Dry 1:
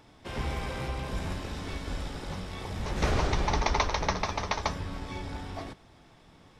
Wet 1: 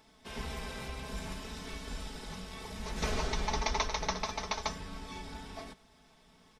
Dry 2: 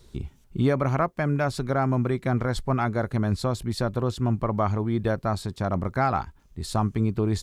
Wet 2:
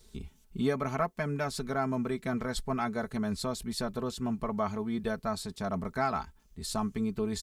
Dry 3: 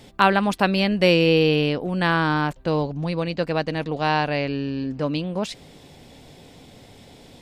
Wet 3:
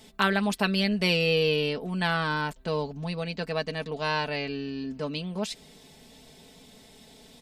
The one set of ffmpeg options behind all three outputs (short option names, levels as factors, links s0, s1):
-af "highshelf=f=3100:g=8,aecho=1:1:4.6:0.68,volume=0.376"